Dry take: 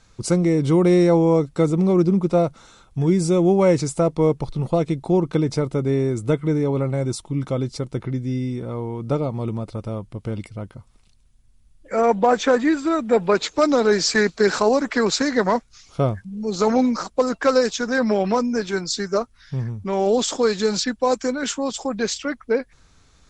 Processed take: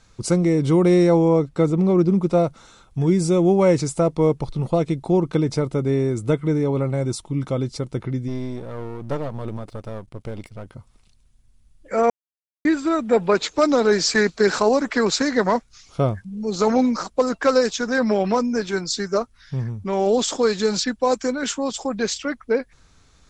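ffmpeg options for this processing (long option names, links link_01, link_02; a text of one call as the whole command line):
ffmpeg -i in.wav -filter_complex "[0:a]asettb=1/sr,asplit=3[link_01][link_02][link_03];[link_01]atrim=end=1.284[link_04];[link_02]atrim=start=1.28:end=2.09,asetpts=PTS-STARTPTS,afade=type=in:duration=0.004:curve=qsin,afade=type=out:start_time=0.806:duration=0.004:curve=qsin,highshelf=frequency=6100:gain=-9[link_05];[link_03]atrim=start=2.086[link_06];[link_04][link_05]acrossfade=duration=0.004:curve1=hsin:curve2=qsin[link_07];[link_07][link_06]acrossfade=duration=0.004:curve1=qsin:curve2=hsin,asplit=3[link_08][link_09][link_10];[link_08]afade=type=out:start_time=8.27:duration=0.02[link_11];[link_09]aeval=exprs='if(lt(val(0),0),0.251*val(0),val(0))':channel_layout=same,afade=type=in:start_time=8.27:duration=0.02,afade=type=out:start_time=10.66:duration=0.02[link_12];[link_10]afade=type=in:start_time=10.66:duration=0.02[link_13];[link_11][link_12][link_13]amix=inputs=3:normalize=0,asplit=3[link_14][link_15][link_16];[link_14]atrim=end=12.1,asetpts=PTS-STARTPTS,afade=type=out:start_time=12.096:duration=0.004:curve=hsin[link_17];[link_15]atrim=start=12.1:end=12.65,asetpts=PTS-STARTPTS,volume=0[link_18];[link_16]atrim=start=12.65,asetpts=PTS-STARTPTS,afade=type=in:duration=0.004:curve=hsin[link_19];[link_17][link_18][link_19]concat=n=3:v=0:a=1" out.wav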